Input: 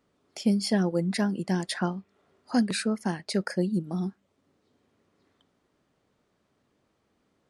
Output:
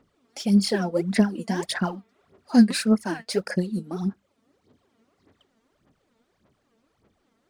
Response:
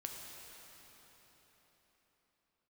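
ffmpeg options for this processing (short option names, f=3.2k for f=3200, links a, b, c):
-af "aphaser=in_gain=1:out_gain=1:delay=4.5:decay=0.73:speed=1.7:type=sinusoidal"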